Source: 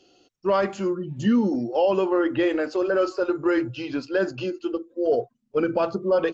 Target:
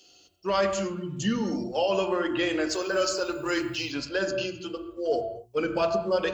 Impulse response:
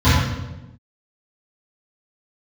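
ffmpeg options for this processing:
-filter_complex "[0:a]asettb=1/sr,asplit=3[s0][s1][s2];[s0]atrim=end=2.694[s3];[s1]atrim=start=2.69:end=3.92,asetpts=PTS-STARTPTS,afade=t=in:d=0.004:c=qsin,afade=t=out:st=1.226:d=0.004:c=qsin,aemphasis=mode=production:type=50fm[s4];[s2]atrim=start=3.916[s5];[s3][s4]acrossfade=d=0.004:c1=hsin:c2=qsin[s6];[s6][s5]acrossfade=d=0.004:c1=qsin:c2=hsin,crystalizer=i=7:c=0,bandreject=f=60:t=h:w=6,bandreject=f=120:t=h:w=6,bandreject=f=180:t=h:w=6,bandreject=f=240:t=h:w=6,bandreject=f=300:t=h:w=6,bandreject=f=360:t=h:w=6,asplit=2[s7][s8];[1:a]atrim=start_sample=2205,afade=t=out:st=0.21:d=0.01,atrim=end_sample=9702,asetrate=29547,aresample=44100[s9];[s8][s9]afir=irnorm=-1:irlink=0,volume=0.0237[s10];[s7][s10]amix=inputs=2:normalize=0,volume=0.447"

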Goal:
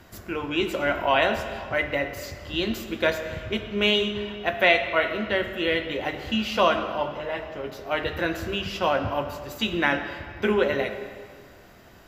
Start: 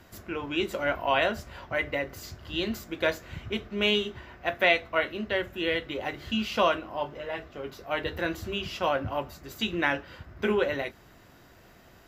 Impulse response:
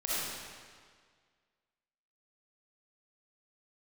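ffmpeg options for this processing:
-filter_complex "[0:a]asplit=2[s0][s1];[s1]highshelf=f=5900:g=-6.5[s2];[1:a]atrim=start_sample=2205[s3];[s2][s3]afir=irnorm=-1:irlink=0,volume=0.224[s4];[s0][s4]amix=inputs=2:normalize=0,volume=1.26"

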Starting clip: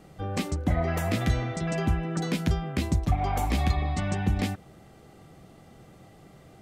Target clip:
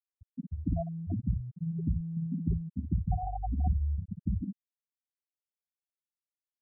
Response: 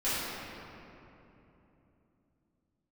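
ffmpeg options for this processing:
-af "aecho=1:1:44|55:0.266|0.531,afftfilt=real='re*gte(hypot(re,im),0.316)':imag='im*gte(hypot(re,im),0.316)':win_size=1024:overlap=0.75,crystalizer=i=6:c=0,volume=0.562"

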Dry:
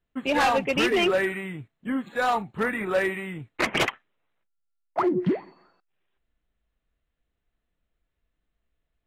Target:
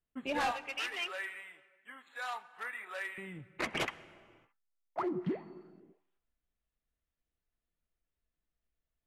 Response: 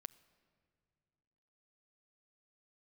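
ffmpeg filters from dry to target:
-filter_complex "[0:a]asettb=1/sr,asplit=3[s0][s1][s2];[s0]atrim=end=0.514[s3];[s1]atrim=start=0.51:end=3.18,asetpts=PTS-STARTPTS,afade=t=in:d=0.004:c=qsin,afade=t=out:st=2.666:d=0.004:c=qsin,highpass=1100[s4];[s2]atrim=start=3.176[s5];[s3][s4]acrossfade=d=0.004:c1=hsin:c2=qsin[s6];[s6][s5]acrossfade=d=0.004:c1=qsin:c2=hsin[s7];[1:a]atrim=start_sample=2205,afade=t=out:st=0.4:d=0.01,atrim=end_sample=18081,asetrate=24696,aresample=44100[s8];[s7][s8]afir=irnorm=-1:irlink=0,volume=0.398"

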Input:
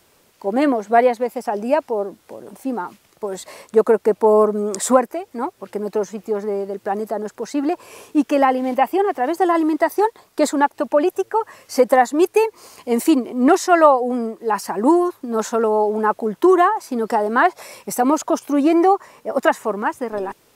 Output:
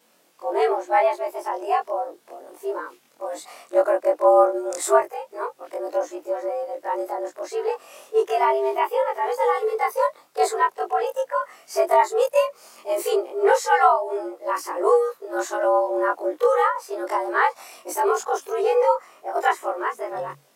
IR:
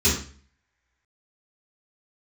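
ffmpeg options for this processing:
-af "afftfilt=real='re':imag='-im':win_size=2048:overlap=0.75,afreqshift=140"

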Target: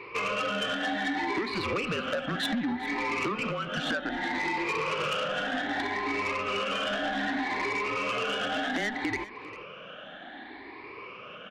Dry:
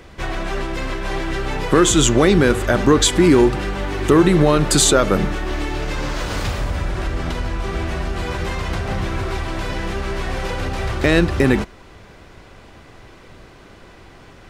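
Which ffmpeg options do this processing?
-af "afftfilt=real='re*pow(10,18/40*sin(2*PI*(0.99*log(max(b,1)*sr/1024/100)/log(2)-(0.51)*(pts-256)/sr)))':imag='im*pow(10,18/40*sin(2*PI*(0.99*log(max(b,1)*sr/1024/100)/log(2)-(0.51)*(pts-256)/sr)))':win_size=1024:overlap=0.75,highpass=f=380:t=q:w=0.5412,highpass=f=380:t=q:w=1.307,lowpass=f=2700:t=q:w=0.5176,lowpass=f=2700:t=q:w=0.7071,lowpass=f=2700:t=q:w=1.932,afreqshift=-170,adynamicequalizer=threshold=0.0224:dfrequency=300:dqfactor=2.9:tfrequency=300:tqfactor=2.9:attack=5:release=100:ratio=0.375:range=2:mode=cutabove:tftype=bell,acompressor=threshold=0.0631:ratio=16,asetrate=55566,aresample=44100,flanger=delay=2:depth=1.6:regen=-75:speed=0.21:shape=sinusoidal,asoftclip=type=tanh:threshold=0.0422,aemphasis=mode=production:type=50fm,aecho=1:1:399:0.141,volume=1.58"

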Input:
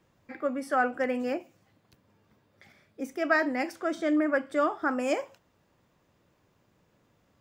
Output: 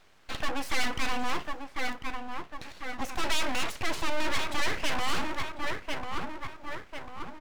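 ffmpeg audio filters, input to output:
-filter_complex "[0:a]lowshelf=f=430:g=-4.5,asplit=2[s0][s1];[s1]adelay=1046,lowpass=f=1300:p=1,volume=0.299,asplit=2[s2][s3];[s3]adelay=1046,lowpass=f=1300:p=1,volume=0.46,asplit=2[s4][s5];[s5]adelay=1046,lowpass=f=1300:p=1,volume=0.46,asplit=2[s6][s7];[s7]adelay=1046,lowpass=f=1300:p=1,volume=0.46,asplit=2[s8][s9];[s9]adelay=1046,lowpass=f=1300:p=1,volume=0.46[s10];[s2][s4][s6][s8][s10]amix=inputs=5:normalize=0[s11];[s0][s11]amix=inputs=2:normalize=0,asplit=2[s12][s13];[s13]highpass=f=720:p=1,volume=20,asoftclip=type=tanh:threshold=0.251[s14];[s12][s14]amix=inputs=2:normalize=0,lowpass=f=2600:p=1,volume=0.501,aeval=exprs='abs(val(0))':c=same,volume=0.668"

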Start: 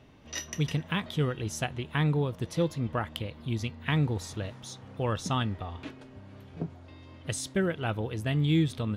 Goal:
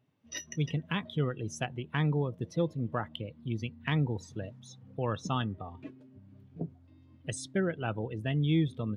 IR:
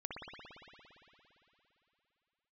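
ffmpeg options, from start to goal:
-af "afftdn=nr=18:nf=-39,highpass=f=100:w=0.5412,highpass=f=100:w=1.3066,acontrast=50,atempo=1,adynamicequalizer=threshold=0.00708:dfrequency=3900:dqfactor=0.7:tfrequency=3900:tqfactor=0.7:attack=5:release=100:ratio=0.375:range=3:mode=cutabove:tftype=highshelf,volume=0.398"

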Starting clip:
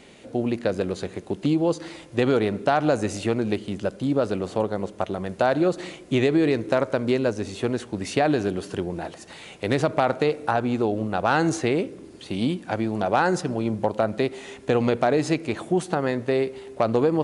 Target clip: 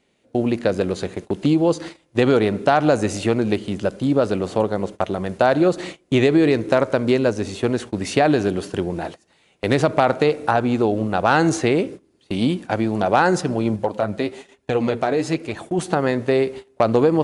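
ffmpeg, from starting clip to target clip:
-filter_complex "[0:a]agate=range=0.0891:threshold=0.0158:ratio=16:detection=peak,asettb=1/sr,asplit=3[s0][s1][s2];[s0]atrim=end=13.764[s3];[s1]atrim=start=13.76:end=15.79,asetpts=PTS-STARTPTS,afade=t=in:d=0.004:c=qsin,afade=t=out:st=2.026:d=0.004:c=qsin,flanger=delay=1.1:depth=10:regen=41:speed=1.1:shape=sinusoidal[s4];[s2]atrim=start=15.786[s5];[s3][s4]acrossfade=d=0.004:c1=hsin:c2=qsin[s6];[s6][s5]acrossfade=d=0.004:c1=qsin:c2=hsin,volume=1.68"

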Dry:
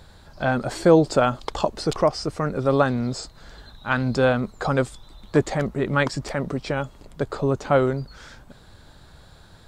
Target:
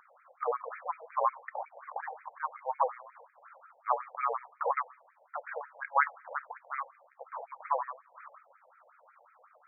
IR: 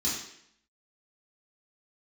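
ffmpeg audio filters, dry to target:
-filter_complex "[0:a]aeval=exprs='val(0)+0.0562*sin(2*PI*520*n/s)':c=same,highpass=f=330:t=q:w=0.5412,highpass=f=330:t=q:w=1.307,lowpass=f=3400:t=q:w=0.5176,lowpass=f=3400:t=q:w=0.7071,lowpass=f=3400:t=q:w=1.932,afreqshift=-300,asplit=2[s0][s1];[1:a]atrim=start_sample=2205,adelay=25[s2];[s1][s2]afir=irnorm=-1:irlink=0,volume=0.0562[s3];[s0][s3]amix=inputs=2:normalize=0,afftfilt=real='re*between(b*sr/1024,630*pow(1800/630,0.5+0.5*sin(2*PI*5.5*pts/sr))/1.41,630*pow(1800/630,0.5+0.5*sin(2*PI*5.5*pts/sr))*1.41)':imag='im*between(b*sr/1024,630*pow(1800/630,0.5+0.5*sin(2*PI*5.5*pts/sr))/1.41,630*pow(1800/630,0.5+0.5*sin(2*PI*5.5*pts/sr))*1.41)':win_size=1024:overlap=0.75"

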